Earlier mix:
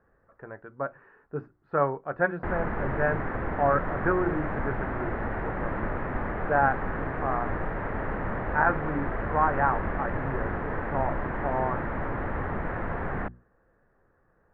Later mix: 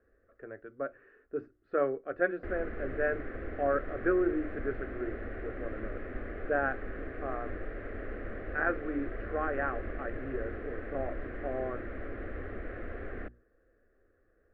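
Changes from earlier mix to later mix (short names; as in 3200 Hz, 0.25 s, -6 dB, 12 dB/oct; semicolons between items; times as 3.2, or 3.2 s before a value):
background -5.5 dB; master: add fixed phaser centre 380 Hz, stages 4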